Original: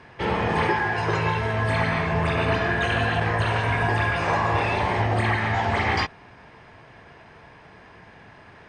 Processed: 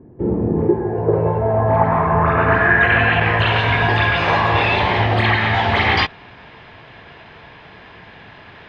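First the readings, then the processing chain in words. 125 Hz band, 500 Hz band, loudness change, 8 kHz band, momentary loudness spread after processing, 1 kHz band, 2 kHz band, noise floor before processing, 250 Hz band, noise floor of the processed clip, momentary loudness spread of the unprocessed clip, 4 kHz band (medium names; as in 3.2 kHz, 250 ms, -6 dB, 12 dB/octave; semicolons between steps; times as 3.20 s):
+5.5 dB, +8.0 dB, +7.0 dB, no reading, 6 LU, +6.5 dB, +8.0 dB, -49 dBFS, +7.5 dB, -42 dBFS, 2 LU, +9.0 dB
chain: low-pass sweep 320 Hz -> 3.6 kHz, 0.53–3.64 s; trim +5.5 dB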